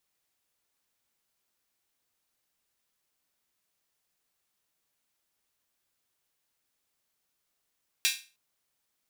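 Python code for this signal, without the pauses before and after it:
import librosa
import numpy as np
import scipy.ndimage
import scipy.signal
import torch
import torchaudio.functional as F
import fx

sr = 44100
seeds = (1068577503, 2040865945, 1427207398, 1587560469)

y = fx.drum_hat_open(sr, length_s=0.31, from_hz=2600.0, decay_s=0.33)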